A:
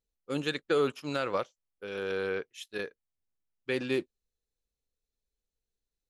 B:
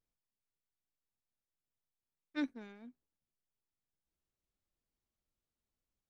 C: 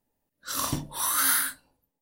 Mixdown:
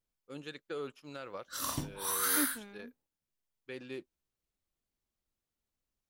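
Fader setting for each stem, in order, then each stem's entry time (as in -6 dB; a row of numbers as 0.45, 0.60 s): -13.0, +1.0, -7.0 dB; 0.00, 0.00, 1.05 s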